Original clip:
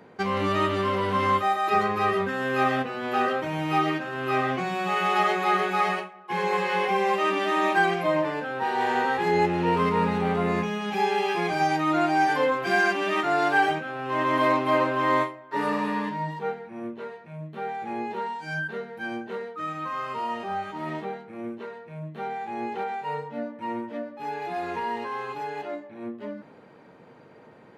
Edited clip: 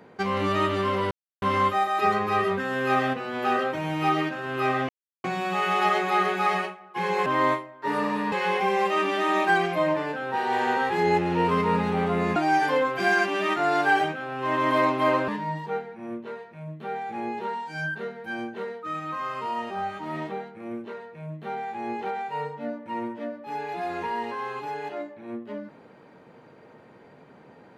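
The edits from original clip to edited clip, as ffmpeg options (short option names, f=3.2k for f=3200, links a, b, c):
-filter_complex "[0:a]asplit=7[a][b][c][d][e][f][g];[a]atrim=end=1.11,asetpts=PTS-STARTPTS,afade=t=out:st=1.106:d=0.004:c=hsin,apad=pad_dur=0.31[h];[b]atrim=start=1.11:end=4.58,asetpts=PTS-STARTPTS,afade=t=in:d=0.004:c=hsin,afade=t=out:st=3.466:d=0.004:c=hsin,apad=pad_dur=0.35[i];[c]atrim=start=4.58:end=6.602,asetpts=PTS-STARTPTS,afade=t=in:d=0.004:c=hsin[j];[d]atrim=start=14.948:end=16.012[k];[e]atrim=start=6.598:end=10.642[l];[f]atrim=start=12.028:end=14.952[m];[g]atrim=start=16.008[n];[h][i][j]concat=n=3:v=0:a=1[o];[o][k]acrossfade=d=0.004:c1=hsin:c2=hsin[p];[p][l]acrossfade=d=0.004:c1=hsin:c2=hsin[q];[q][m]acrossfade=d=0.004:c1=hsin:c2=hsin[r];[r][n]acrossfade=d=0.004:c1=hsin:c2=hsin"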